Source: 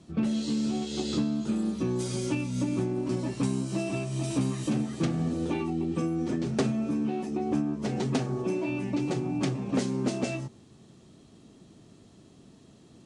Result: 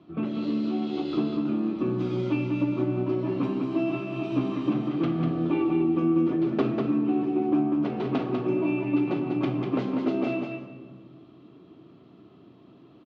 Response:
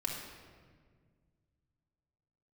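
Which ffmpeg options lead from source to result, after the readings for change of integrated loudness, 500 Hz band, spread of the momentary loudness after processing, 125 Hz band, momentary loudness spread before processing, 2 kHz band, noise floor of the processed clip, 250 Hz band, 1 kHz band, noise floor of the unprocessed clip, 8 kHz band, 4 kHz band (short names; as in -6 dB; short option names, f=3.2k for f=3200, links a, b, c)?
+3.0 dB, +4.0 dB, 5 LU, -1.0 dB, 2 LU, +1.0 dB, -53 dBFS, +3.5 dB, +3.5 dB, -55 dBFS, under -20 dB, n/a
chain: -filter_complex "[0:a]highpass=140,equalizer=f=220:t=q:w=4:g=-4,equalizer=f=310:t=q:w=4:g=5,equalizer=f=1.2k:t=q:w=4:g=6,equalizer=f=1.8k:t=q:w=4:g=-6,lowpass=f=3.2k:w=0.5412,lowpass=f=3.2k:w=1.3066,aecho=1:1:195:0.562,asplit=2[a][b];[1:a]atrim=start_sample=2205,asetrate=48510,aresample=44100[c];[b][c]afir=irnorm=-1:irlink=0,volume=-3.5dB[d];[a][d]amix=inputs=2:normalize=0,volume=-3.5dB"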